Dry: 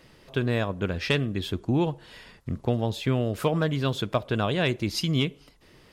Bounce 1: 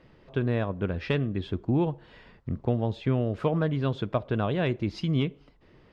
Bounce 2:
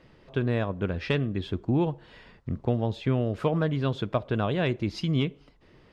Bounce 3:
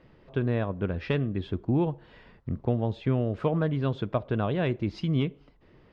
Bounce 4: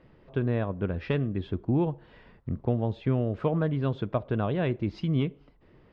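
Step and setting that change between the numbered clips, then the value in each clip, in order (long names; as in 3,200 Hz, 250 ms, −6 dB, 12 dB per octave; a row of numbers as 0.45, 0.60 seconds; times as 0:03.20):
head-to-tape spacing loss, at 10 kHz: 28, 20, 36, 45 decibels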